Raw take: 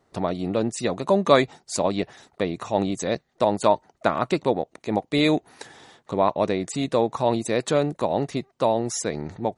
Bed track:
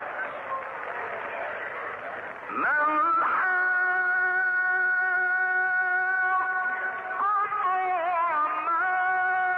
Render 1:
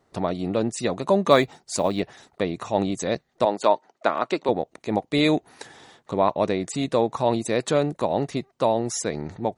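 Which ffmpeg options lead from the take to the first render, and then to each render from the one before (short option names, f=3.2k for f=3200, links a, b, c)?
-filter_complex "[0:a]asettb=1/sr,asplit=3[a][b][c];[a]atrim=end=1.314[d];[b]atrim=start=1.31:end=2,asetpts=PTS-STARTPTS,afade=t=in:d=0.004:c=qsin,afade=t=out:st=0.686:d=0.004:c=qsin,acrusher=bits=9:mode=log:mix=0:aa=0.000001[e];[c]atrim=start=1.996[f];[d][e]acrossfade=d=0.004:c1=hsin:c2=qsin[g];[g][f]acrossfade=d=0.004:c1=qsin:c2=hsin,asettb=1/sr,asplit=3[h][i][j];[h]atrim=end=3.454[k];[i]atrim=start=3.45:end=4.49,asetpts=PTS-STARTPTS,afade=t=in:d=0.004:c=qsin,afade=t=out:st=1.036:d=0.004:c=qsin,highpass=300,lowpass=6.6k[l];[j]atrim=start=4.486[m];[k][l]acrossfade=d=0.004:c1=hsin:c2=qsin[n];[n][m]acrossfade=d=0.004:c1=qsin:c2=hsin"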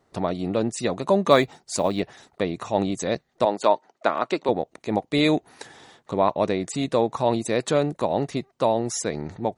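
-af anull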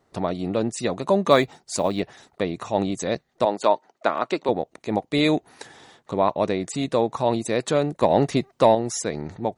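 -filter_complex "[0:a]asettb=1/sr,asplit=3[a][b][c];[a]atrim=end=8.024[d];[b]atrim=start=8.02:end=8.75,asetpts=PTS-STARTPTS,afade=t=in:d=0.004:c=qsin,afade=t=out:st=0.726:d=0.004:c=qsin,acontrast=47[e];[c]atrim=start=8.746[f];[d][e]acrossfade=d=0.004:c1=hsin:c2=qsin[g];[g][f]acrossfade=d=0.004:c1=qsin:c2=hsin"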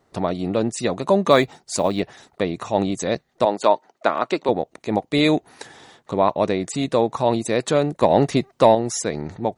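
-af "volume=2.5dB,alimiter=limit=-1dB:level=0:latency=1"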